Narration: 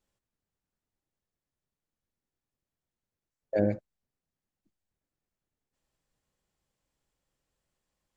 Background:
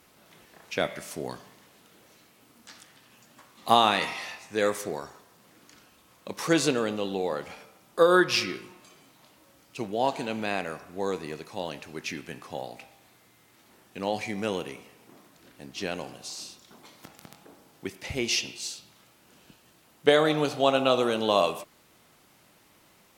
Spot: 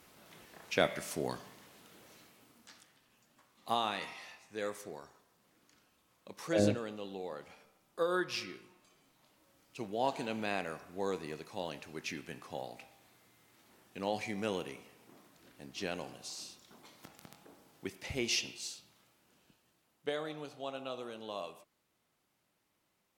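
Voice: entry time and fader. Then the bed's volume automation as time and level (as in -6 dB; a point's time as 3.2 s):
3.00 s, -3.0 dB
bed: 2.21 s -1.5 dB
3.05 s -13 dB
8.92 s -13 dB
10.2 s -6 dB
18.46 s -6 dB
20.43 s -19 dB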